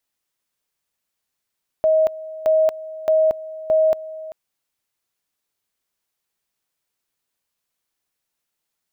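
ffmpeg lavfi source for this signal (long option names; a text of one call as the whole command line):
ffmpeg -f lavfi -i "aevalsrc='pow(10,(-12.5-17.5*gte(mod(t,0.62),0.23))/20)*sin(2*PI*632*t)':duration=2.48:sample_rate=44100" out.wav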